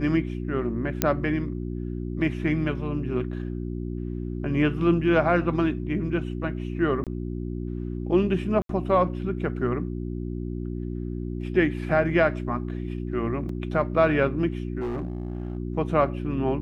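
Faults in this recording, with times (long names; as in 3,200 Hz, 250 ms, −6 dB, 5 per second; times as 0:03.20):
mains hum 60 Hz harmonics 6 −31 dBFS
0:01.02: click −4 dBFS
0:07.04–0:07.07: drop-out 27 ms
0:08.62–0:08.69: drop-out 73 ms
0:13.49: drop-out 3.4 ms
0:14.80–0:15.57: clipping −25.5 dBFS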